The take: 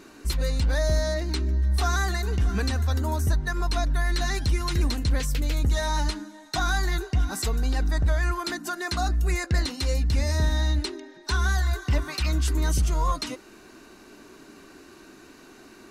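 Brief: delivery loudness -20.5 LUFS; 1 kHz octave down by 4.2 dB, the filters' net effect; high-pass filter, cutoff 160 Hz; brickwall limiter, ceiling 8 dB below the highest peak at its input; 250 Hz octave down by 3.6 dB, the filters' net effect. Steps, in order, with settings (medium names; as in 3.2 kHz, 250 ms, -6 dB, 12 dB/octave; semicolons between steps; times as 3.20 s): high-pass 160 Hz; peaking EQ 250 Hz -3.5 dB; peaking EQ 1 kHz -5.5 dB; trim +14.5 dB; peak limiter -11 dBFS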